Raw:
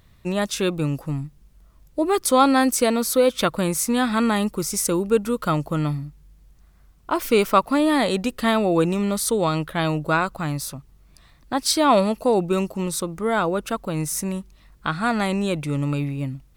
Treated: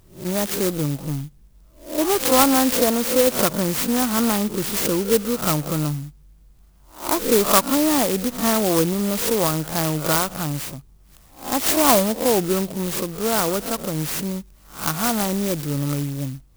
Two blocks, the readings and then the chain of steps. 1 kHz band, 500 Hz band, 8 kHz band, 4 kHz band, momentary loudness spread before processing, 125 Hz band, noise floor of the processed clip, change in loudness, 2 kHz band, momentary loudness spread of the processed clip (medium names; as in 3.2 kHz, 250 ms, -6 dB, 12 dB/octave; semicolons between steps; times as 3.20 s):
-1.0 dB, 0.0 dB, +4.0 dB, +3.0 dB, 10 LU, 0.0 dB, -51 dBFS, +1.5 dB, -1.0 dB, 12 LU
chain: reverse spectral sustain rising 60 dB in 0.38 s; sampling jitter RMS 0.13 ms